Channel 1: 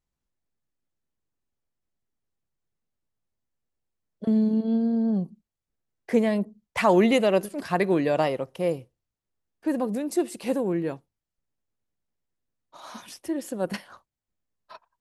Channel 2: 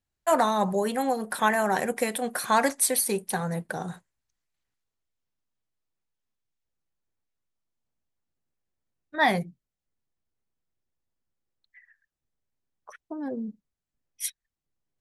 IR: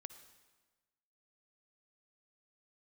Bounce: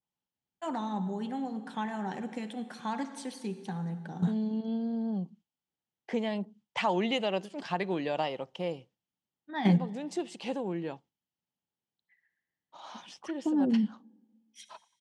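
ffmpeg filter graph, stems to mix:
-filter_complex "[0:a]adynamicequalizer=threshold=0.0141:dfrequency=1900:dqfactor=0.7:tfrequency=1900:tqfactor=0.7:attack=5:release=100:ratio=0.375:range=2:mode=boostabove:tftype=highshelf,volume=0.447,asplit=2[s0][s1];[1:a]lowshelf=f=390:t=q:w=1.5:g=9.5,adelay=350,volume=1,asplit=2[s2][s3];[s3]volume=0.299[s4];[s1]apad=whole_len=677265[s5];[s2][s5]sidechaingate=range=0.0224:threshold=0.00158:ratio=16:detection=peak[s6];[2:a]atrim=start_sample=2205[s7];[s4][s7]afir=irnorm=-1:irlink=0[s8];[s0][s6][s8]amix=inputs=3:normalize=0,highpass=130,equalizer=f=180:t=q:w=4:g=4,equalizer=f=840:t=q:w=4:g=9,equalizer=f=3100:t=q:w=4:g=9,lowpass=f=7000:w=0.5412,lowpass=f=7000:w=1.3066,acompressor=threshold=0.0224:ratio=1.5"

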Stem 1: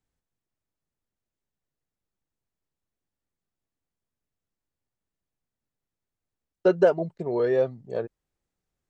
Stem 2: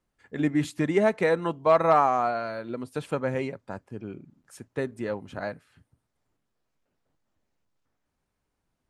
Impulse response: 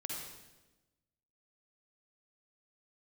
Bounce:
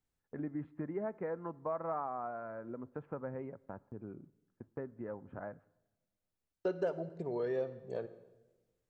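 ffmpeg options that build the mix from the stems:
-filter_complex "[0:a]acompressor=threshold=0.0141:ratio=2,volume=0.562,asplit=2[s0][s1];[s1]volume=0.316[s2];[1:a]lowpass=f=1500:w=0.5412,lowpass=f=1500:w=1.3066,agate=range=0.0631:threshold=0.00447:ratio=16:detection=peak,acompressor=threshold=0.0112:ratio=2,volume=0.531,asplit=2[s3][s4];[s4]volume=0.0794[s5];[2:a]atrim=start_sample=2205[s6];[s2][s5]amix=inputs=2:normalize=0[s7];[s7][s6]afir=irnorm=-1:irlink=0[s8];[s0][s3][s8]amix=inputs=3:normalize=0"

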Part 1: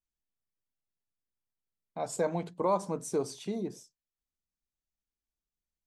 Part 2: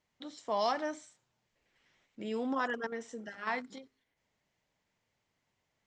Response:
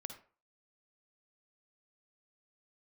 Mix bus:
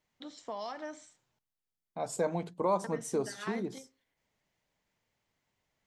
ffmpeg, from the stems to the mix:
-filter_complex "[0:a]volume=0.891[s0];[1:a]acompressor=threshold=0.0158:ratio=6,volume=0.794,asplit=3[s1][s2][s3];[s1]atrim=end=1.39,asetpts=PTS-STARTPTS,afade=t=out:st=1.386:d=0.004:c=hsin[s4];[s2]atrim=start=1.39:end=2.84,asetpts=PTS-STARTPTS,volume=0[s5];[s3]atrim=start=2.84,asetpts=PTS-STARTPTS,afade=t=in:d=0.004:c=hsin[s6];[s4][s5][s6]concat=n=3:v=0:a=1,asplit=2[s7][s8];[s8]volume=0.299[s9];[2:a]atrim=start_sample=2205[s10];[s9][s10]afir=irnorm=-1:irlink=0[s11];[s0][s7][s11]amix=inputs=3:normalize=0"

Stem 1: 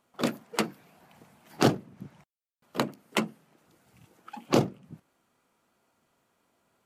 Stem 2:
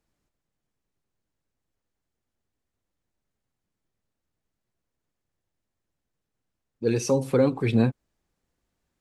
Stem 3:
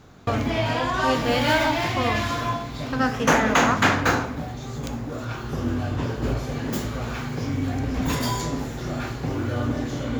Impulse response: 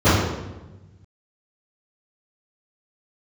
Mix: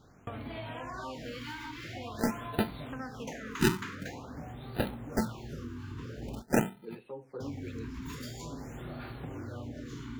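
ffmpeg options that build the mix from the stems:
-filter_complex "[0:a]flanger=delay=4.4:depth=1.1:regen=38:speed=0.25:shape=triangular,acrusher=samples=40:mix=1:aa=0.000001,adelay=2000,volume=1.12[s0];[1:a]acrossover=split=250 4300:gain=0.224 1 0.0631[s1][s2][s3];[s1][s2][s3]amix=inputs=3:normalize=0,asplit=2[s4][s5];[s5]adelay=8.8,afreqshift=-0.9[s6];[s4][s6]amix=inputs=2:normalize=1,volume=0.178[s7];[2:a]acompressor=threshold=0.0398:ratio=6,volume=0.335,asplit=3[s8][s9][s10];[s8]atrim=end=6.42,asetpts=PTS-STARTPTS,afade=t=out:st=6.416:d=0.004:c=hsin[s11];[s9]atrim=start=6.42:end=7.4,asetpts=PTS-STARTPTS,volume=0[s12];[s10]atrim=start=7.4,asetpts=PTS-STARTPTS,afade=t=in:d=0.004:c=hsin[s13];[s11][s12][s13]concat=n=3:v=0:a=1[s14];[s0][s7][s14]amix=inputs=3:normalize=0,afftfilt=real='re*(1-between(b*sr/1024,590*pow(6700/590,0.5+0.5*sin(2*PI*0.47*pts/sr))/1.41,590*pow(6700/590,0.5+0.5*sin(2*PI*0.47*pts/sr))*1.41))':imag='im*(1-between(b*sr/1024,590*pow(6700/590,0.5+0.5*sin(2*PI*0.47*pts/sr))/1.41,590*pow(6700/590,0.5+0.5*sin(2*PI*0.47*pts/sr))*1.41))':win_size=1024:overlap=0.75"

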